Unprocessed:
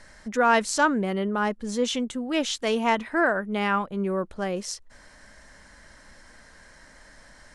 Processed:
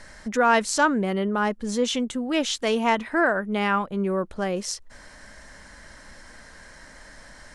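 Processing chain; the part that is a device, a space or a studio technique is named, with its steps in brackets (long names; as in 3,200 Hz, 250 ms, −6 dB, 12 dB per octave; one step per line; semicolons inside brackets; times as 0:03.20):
parallel compression (in parallel at −3 dB: downward compressor, threshold −34 dBFS, peak gain reduction 17.5 dB)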